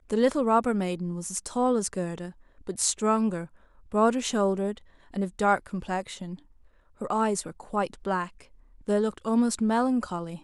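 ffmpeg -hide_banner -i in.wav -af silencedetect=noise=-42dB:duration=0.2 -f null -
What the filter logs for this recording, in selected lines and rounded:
silence_start: 2.31
silence_end: 2.61 | silence_duration: 0.30
silence_start: 3.46
silence_end: 3.92 | silence_duration: 0.46
silence_start: 4.78
silence_end: 5.14 | silence_duration: 0.36
silence_start: 6.39
silence_end: 7.01 | silence_duration: 0.62
silence_start: 8.43
silence_end: 8.87 | silence_duration: 0.43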